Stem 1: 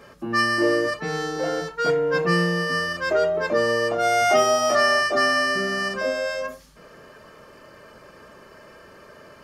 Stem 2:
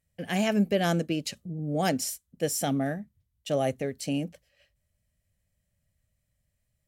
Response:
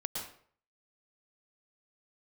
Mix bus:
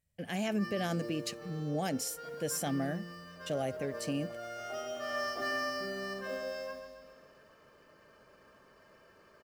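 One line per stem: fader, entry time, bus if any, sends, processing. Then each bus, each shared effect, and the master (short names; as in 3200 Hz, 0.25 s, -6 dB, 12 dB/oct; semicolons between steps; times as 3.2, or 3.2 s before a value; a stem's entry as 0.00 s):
-14.5 dB, 0.25 s, no send, echo send -9 dB, LPF 7400 Hz; notches 60/120/180/240/300/360/420/480/540/600 Hz; companded quantiser 6-bit; auto duck -22 dB, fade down 1.75 s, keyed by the second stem
-4.5 dB, 0.00 s, no send, no echo send, dry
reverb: off
echo: feedback echo 0.138 s, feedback 59%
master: limiter -24.5 dBFS, peak gain reduction 6.5 dB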